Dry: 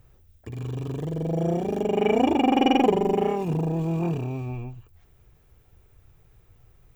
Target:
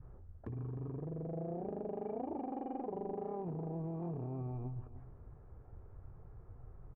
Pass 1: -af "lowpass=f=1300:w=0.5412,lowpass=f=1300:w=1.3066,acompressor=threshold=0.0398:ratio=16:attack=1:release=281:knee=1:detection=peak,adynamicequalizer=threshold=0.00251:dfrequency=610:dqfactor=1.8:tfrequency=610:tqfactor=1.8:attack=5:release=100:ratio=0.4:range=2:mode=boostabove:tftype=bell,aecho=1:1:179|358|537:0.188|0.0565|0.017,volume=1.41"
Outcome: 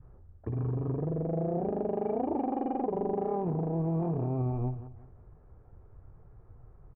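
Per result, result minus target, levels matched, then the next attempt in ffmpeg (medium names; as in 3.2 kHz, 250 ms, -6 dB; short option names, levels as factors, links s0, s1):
compression: peak gain reduction -10 dB; echo 126 ms early
-af "lowpass=f=1300:w=0.5412,lowpass=f=1300:w=1.3066,acompressor=threshold=0.0119:ratio=16:attack=1:release=281:knee=1:detection=peak,adynamicequalizer=threshold=0.00251:dfrequency=610:dqfactor=1.8:tfrequency=610:tqfactor=1.8:attack=5:release=100:ratio=0.4:range=2:mode=boostabove:tftype=bell,aecho=1:1:179|358|537:0.188|0.0565|0.017,volume=1.41"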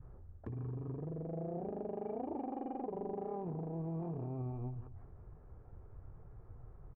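echo 126 ms early
-af "lowpass=f=1300:w=0.5412,lowpass=f=1300:w=1.3066,acompressor=threshold=0.0119:ratio=16:attack=1:release=281:knee=1:detection=peak,adynamicequalizer=threshold=0.00251:dfrequency=610:dqfactor=1.8:tfrequency=610:tqfactor=1.8:attack=5:release=100:ratio=0.4:range=2:mode=boostabove:tftype=bell,aecho=1:1:305|610|915:0.188|0.0565|0.017,volume=1.41"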